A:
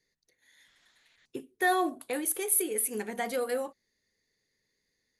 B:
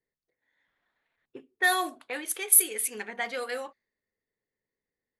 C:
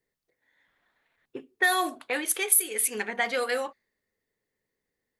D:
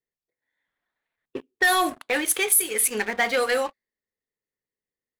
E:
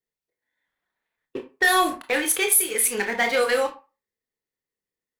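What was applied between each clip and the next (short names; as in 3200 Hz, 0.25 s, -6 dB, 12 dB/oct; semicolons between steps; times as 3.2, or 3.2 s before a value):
low-pass opened by the level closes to 710 Hz, open at -23 dBFS; tilt shelf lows -9 dB, about 870 Hz
compressor 3:1, threshold -27 dBFS, peak gain reduction 10 dB; gain +6 dB
sample leveller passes 3; gain -5.5 dB
reverb RT60 0.30 s, pre-delay 22 ms, DRR 5 dB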